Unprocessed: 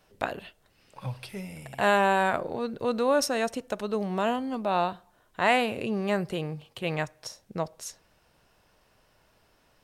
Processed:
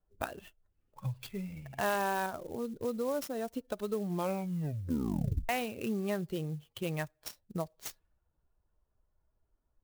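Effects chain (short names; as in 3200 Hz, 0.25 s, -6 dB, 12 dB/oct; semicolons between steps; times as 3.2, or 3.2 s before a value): per-bin expansion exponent 1.5; 6.2–6.95 dynamic EQ 2000 Hz, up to -5 dB, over -51 dBFS, Q 1.2; compressor 2.5:1, threshold -41 dBFS, peak gain reduction 14.5 dB; low-pass opened by the level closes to 990 Hz, open at -38.5 dBFS; 2.26–3.55 bell 2700 Hz -14 dB 2 oct; 4.06 tape stop 1.43 s; clock jitter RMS 0.032 ms; gain +6 dB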